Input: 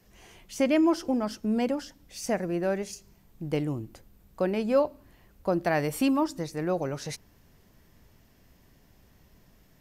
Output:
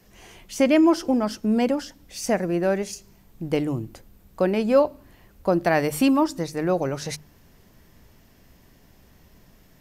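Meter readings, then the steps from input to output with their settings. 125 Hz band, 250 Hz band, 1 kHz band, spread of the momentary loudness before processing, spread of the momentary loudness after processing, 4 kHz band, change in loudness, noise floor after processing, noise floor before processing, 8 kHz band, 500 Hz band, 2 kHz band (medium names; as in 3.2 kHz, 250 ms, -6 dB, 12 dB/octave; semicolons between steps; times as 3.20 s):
+4.0 dB, +5.5 dB, +5.5 dB, 15 LU, 15 LU, +5.5 dB, +5.5 dB, -55 dBFS, -61 dBFS, +5.5 dB, +5.5 dB, +5.5 dB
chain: hum notches 50/100/150 Hz; trim +5.5 dB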